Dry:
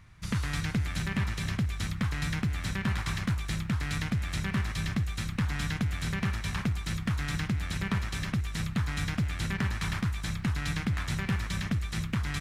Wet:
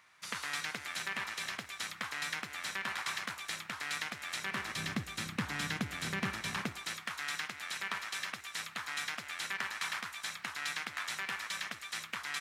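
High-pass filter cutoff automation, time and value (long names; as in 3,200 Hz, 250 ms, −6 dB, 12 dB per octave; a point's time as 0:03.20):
0:04.37 650 Hz
0:04.84 250 Hz
0:06.55 250 Hz
0:07.07 800 Hz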